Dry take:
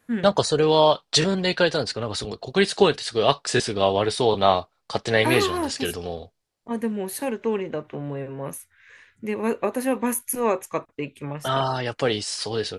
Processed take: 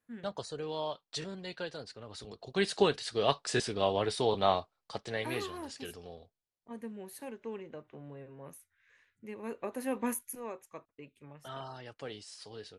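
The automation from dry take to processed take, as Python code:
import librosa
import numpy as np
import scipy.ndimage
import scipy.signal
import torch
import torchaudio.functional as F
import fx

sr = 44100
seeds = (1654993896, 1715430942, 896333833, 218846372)

y = fx.gain(x, sr, db=fx.line((2.04, -19.5), (2.69, -9.0), (4.59, -9.0), (5.21, -16.5), (9.45, -16.5), (10.08, -8.5), (10.47, -20.0)))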